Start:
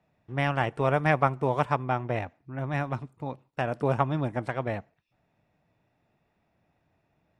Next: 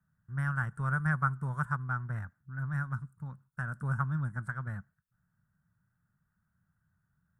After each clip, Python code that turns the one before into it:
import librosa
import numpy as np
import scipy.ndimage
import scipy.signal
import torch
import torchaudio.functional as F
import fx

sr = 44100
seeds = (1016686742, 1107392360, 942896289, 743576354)

y = fx.curve_eq(x, sr, hz=(190.0, 290.0, 460.0, 730.0, 1500.0, 2400.0, 5100.0, 8600.0), db=(0, -20, -23, -23, 5, -28, -16, 2))
y = y * librosa.db_to_amplitude(-1.5)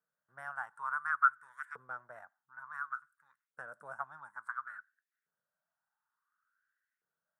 y = fx.filter_lfo_highpass(x, sr, shape='saw_up', hz=0.57, low_hz=450.0, high_hz=2200.0, q=5.8)
y = y * librosa.db_to_amplitude(-8.5)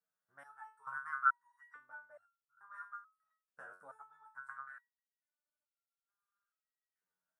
y = fx.resonator_held(x, sr, hz=2.3, low_hz=92.0, high_hz=1400.0)
y = y * librosa.db_to_amplitude(5.0)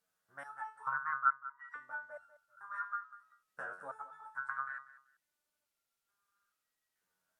y = fx.env_lowpass_down(x, sr, base_hz=860.0, full_db=-37.5)
y = fx.echo_feedback(y, sr, ms=193, feedback_pct=21, wet_db=-16.0)
y = y * librosa.db_to_amplitude(9.0)